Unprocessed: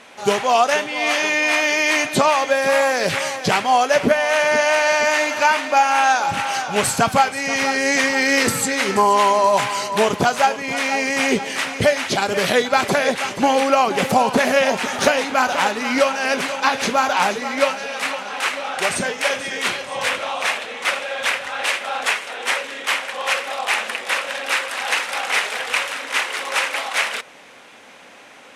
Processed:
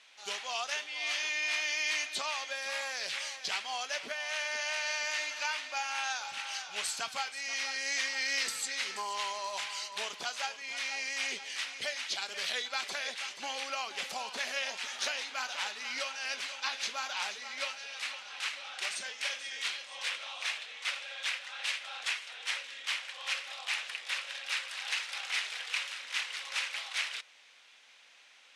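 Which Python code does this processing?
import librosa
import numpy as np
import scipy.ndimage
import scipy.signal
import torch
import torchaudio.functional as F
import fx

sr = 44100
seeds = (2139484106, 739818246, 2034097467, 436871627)

y = fx.bandpass_q(x, sr, hz=4200.0, q=1.1)
y = F.gain(torch.from_numpy(y), -8.5).numpy()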